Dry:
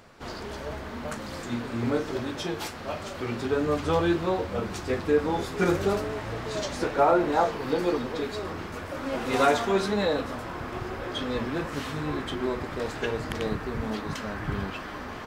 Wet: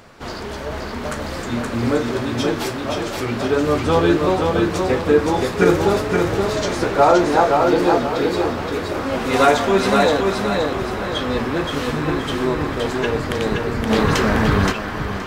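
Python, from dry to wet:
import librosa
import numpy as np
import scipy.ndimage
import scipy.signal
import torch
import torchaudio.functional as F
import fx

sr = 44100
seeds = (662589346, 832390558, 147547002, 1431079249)

y = fx.echo_feedback(x, sr, ms=522, feedback_pct=37, wet_db=-3.5)
y = fx.env_flatten(y, sr, amount_pct=50, at=(13.89, 14.71), fade=0.02)
y = y * 10.0 ** (7.5 / 20.0)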